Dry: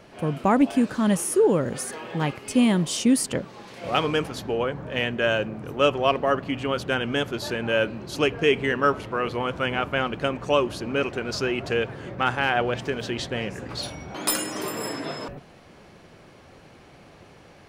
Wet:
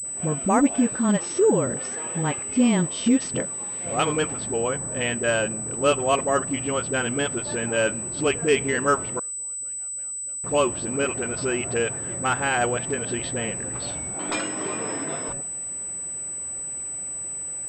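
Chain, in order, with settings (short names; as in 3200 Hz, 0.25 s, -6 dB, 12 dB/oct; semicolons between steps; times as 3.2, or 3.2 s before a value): dispersion highs, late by 48 ms, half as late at 350 Hz; 9.19–10.44 flipped gate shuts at -25 dBFS, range -34 dB; pulse-width modulation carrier 8000 Hz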